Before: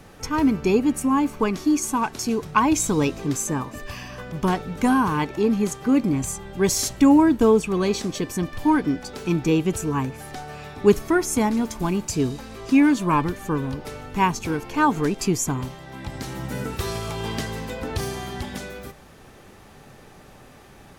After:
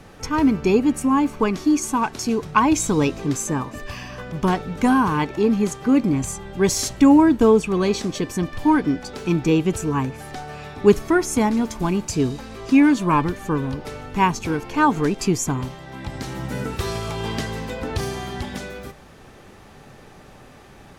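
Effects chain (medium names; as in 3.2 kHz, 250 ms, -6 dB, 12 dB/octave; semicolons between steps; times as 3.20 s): treble shelf 11 kHz -9 dB; trim +2 dB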